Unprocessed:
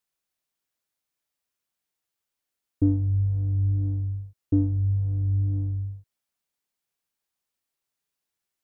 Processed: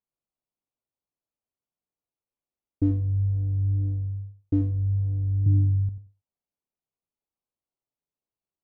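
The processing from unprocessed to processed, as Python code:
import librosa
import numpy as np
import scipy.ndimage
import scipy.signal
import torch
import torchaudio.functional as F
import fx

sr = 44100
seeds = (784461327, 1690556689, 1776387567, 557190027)

y = fx.wiener(x, sr, points=25)
y = fx.graphic_eq(y, sr, hz=(125, 250, 500), db=(9, 11, -8), at=(5.46, 5.89))
y = fx.echo_feedback(y, sr, ms=90, feedback_pct=17, wet_db=-12)
y = y * librosa.db_to_amplitude(-1.5)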